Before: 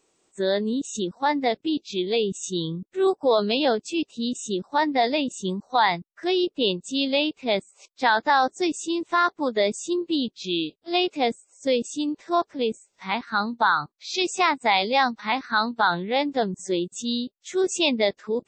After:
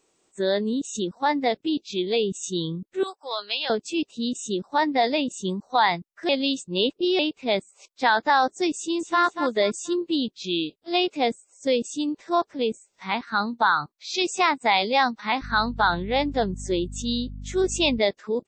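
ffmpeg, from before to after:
ffmpeg -i in.wav -filter_complex "[0:a]asettb=1/sr,asplit=3[link_01][link_02][link_03];[link_01]atrim=end=3.034[link_04];[link_02]atrim=start=3.03:end=3.7,asetpts=PTS-STARTPTS,afade=type=in:duration=0.004:curve=qsin,afade=type=out:start_time=0.666:duration=0.004:curve=qsin,highpass=1300[link_05];[link_03]atrim=start=3.696[link_06];[link_04][link_05]acrossfade=duration=0.004:curve1=hsin:curve2=qsin[link_07];[link_07][link_06]acrossfade=duration=0.004:curve1=qsin:curve2=hsin,asplit=2[link_08][link_09];[link_09]afade=type=in:start_time=8.75:duration=0.01,afade=type=out:start_time=9.22:duration=0.01,aecho=0:1:240|480|720:0.354813|0.106444|0.0319332[link_10];[link_08][link_10]amix=inputs=2:normalize=0,asettb=1/sr,asplit=3[link_11][link_12][link_13];[link_11]atrim=end=15.424[link_14];[link_12]atrim=start=15.42:end=17.99,asetpts=PTS-STARTPTS,afade=type=in:duration=0.004:curve=qsin,afade=type=out:start_time=2.566:duration=0.004:curve=qsin,aeval=exprs='val(0)+0.0178*(sin(2*PI*50*n/s)+sin(2*PI*2*50*n/s)/2+sin(2*PI*3*50*n/s)/3+sin(2*PI*4*50*n/s)/4+sin(2*PI*5*50*n/s)/5)':channel_layout=same[link_15];[link_13]atrim=start=17.986[link_16];[link_14][link_15]acrossfade=duration=0.004:curve1=hsin:curve2=qsin[link_17];[link_17][link_16]acrossfade=duration=0.004:curve1=qsin:curve2=hsin,asplit=3[link_18][link_19][link_20];[link_18]atrim=end=6.292[link_21];[link_19]atrim=start=6.288:end=7.192,asetpts=PTS-STARTPTS,areverse[link_22];[link_20]atrim=start=7.188[link_23];[link_21][link_22]acrossfade=duration=0.004:curve1=hsin:curve2=hsin[link_24];[link_24][link_23]acrossfade=duration=0.004:curve1=hsin:curve2=hsin" out.wav

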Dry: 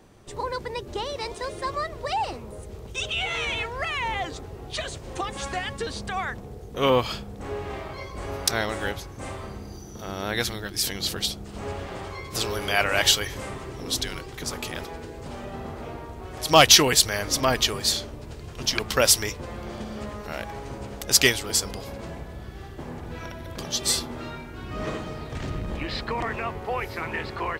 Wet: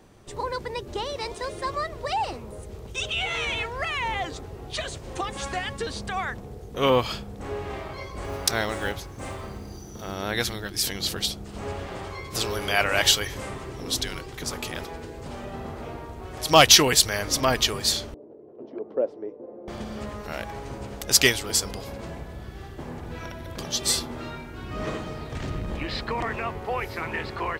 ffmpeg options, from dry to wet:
ffmpeg -i in.wav -filter_complex "[0:a]asettb=1/sr,asplit=3[link_01][link_02][link_03];[link_01]atrim=end=8.244[link_04];[link_02]atrim=start=8.24:end=10.14,asetpts=PTS-STARTPTS,afade=type=in:duration=0.004:curve=qsin,afade=type=out:start_time=1.896:duration=0.004:curve=qsin,acrusher=bits=7:mode=log:mix=0:aa=0.000001[link_05];[link_03]atrim=start=10.136[link_06];[link_04][link_05]acrossfade=duration=0.004:curve1=hsin:curve2=qsin[link_07];[link_07][link_06]acrossfade=duration=0.004:curve1=qsin:curve2=hsin,asettb=1/sr,asplit=3[link_08][link_09][link_10];[link_08]atrim=end=18.144[link_11];[link_09]atrim=start=18.14:end=19.68,asetpts=PTS-STARTPTS,afade=type=in:duration=0.004:curve=qsin,afade=type=out:start_time=1.536:duration=0.004:curve=qsin,asuperpass=centerf=410:order=4:qfactor=1.3[link_12];[link_10]atrim=start=19.676[link_13];[link_11][link_12]acrossfade=duration=0.004:curve1=hsin:curve2=qsin[link_14];[link_14][link_13]acrossfade=duration=0.004:curve1=qsin:curve2=hsin" out.wav

